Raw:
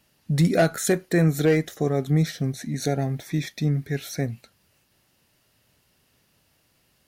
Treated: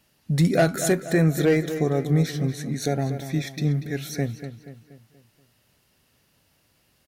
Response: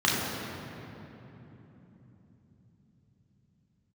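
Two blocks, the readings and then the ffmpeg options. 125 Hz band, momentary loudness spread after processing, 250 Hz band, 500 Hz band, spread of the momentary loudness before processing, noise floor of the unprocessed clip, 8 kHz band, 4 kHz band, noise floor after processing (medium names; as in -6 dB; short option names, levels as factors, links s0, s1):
0.0 dB, 9 LU, +0.5 dB, +0.5 dB, 10 LU, -66 dBFS, 0.0 dB, 0.0 dB, -66 dBFS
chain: -filter_complex "[0:a]asplit=2[s0][s1];[s1]adelay=239,lowpass=f=3600:p=1,volume=0.299,asplit=2[s2][s3];[s3]adelay=239,lowpass=f=3600:p=1,volume=0.47,asplit=2[s4][s5];[s5]adelay=239,lowpass=f=3600:p=1,volume=0.47,asplit=2[s6][s7];[s7]adelay=239,lowpass=f=3600:p=1,volume=0.47,asplit=2[s8][s9];[s9]adelay=239,lowpass=f=3600:p=1,volume=0.47[s10];[s0][s2][s4][s6][s8][s10]amix=inputs=6:normalize=0"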